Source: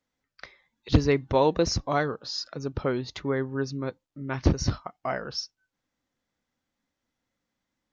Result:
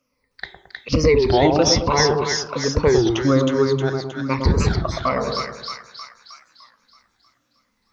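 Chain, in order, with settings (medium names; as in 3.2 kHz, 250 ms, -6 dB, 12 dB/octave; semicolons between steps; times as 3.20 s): drifting ripple filter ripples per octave 0.9, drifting -1.2 Hz, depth 17 dB; peak limiter -14 dBFS, peak gain reduction 10 dB; two-band feedback delay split 1.1 kHz, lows 110 ms, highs 313 ms, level -3 dB; on a send at -19 dB: reverberation RT60 0.55 s, pre-delay 27 ms; on the sum: warped record 33 1/3 rpm, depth 160 cents; trim +6.5 dB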